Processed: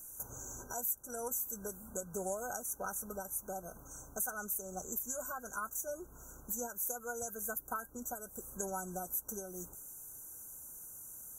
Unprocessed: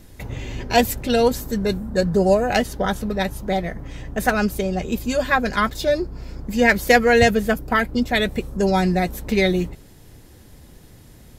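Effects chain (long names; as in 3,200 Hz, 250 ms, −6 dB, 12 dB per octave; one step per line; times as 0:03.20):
first-order pre-emphasis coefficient 0.97
downward compressor 4 to 1, threshold −42 dBFS, peak gain reduction 17.5 dB
brick-wall band-stop 1,600–5,800 Hz
level +6.5 dB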